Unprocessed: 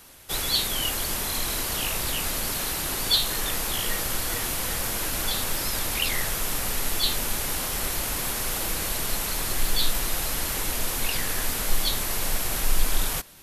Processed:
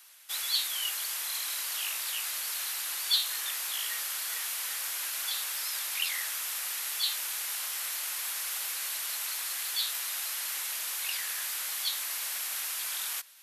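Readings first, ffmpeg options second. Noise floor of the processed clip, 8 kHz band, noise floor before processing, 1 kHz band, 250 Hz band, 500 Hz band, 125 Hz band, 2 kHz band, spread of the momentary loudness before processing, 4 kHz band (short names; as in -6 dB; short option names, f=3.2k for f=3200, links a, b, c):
-36 dBFS, -4.5 dB, -29 dBFS, -11.0 dB, under -30 dB, -21.0 dB, under -40 dB, -5.5 dB, 3 LU, -4.5 dB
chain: -af "highpass=1.4k,aeval=exprs='0.355*(cos(1*acos(clip(val(0)/0.355,-1,1)))-cos(1*PI/2))+0.00282*(cos(4*acos(clip(val(0)/0.355,-1,1)))-cos(4*PI/2))':c=same,volume=-4.5dB"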